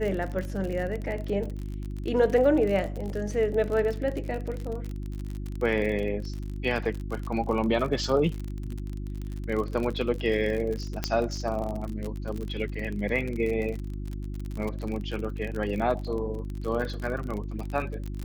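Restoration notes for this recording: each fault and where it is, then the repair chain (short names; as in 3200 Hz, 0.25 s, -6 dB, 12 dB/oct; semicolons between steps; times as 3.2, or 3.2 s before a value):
crackle 42/s -31 dBFS
hum 50 Hz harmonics 7 -34 dBFS
11.04 pop -11 dBFS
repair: de-click; de-hum 50 Hz, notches 7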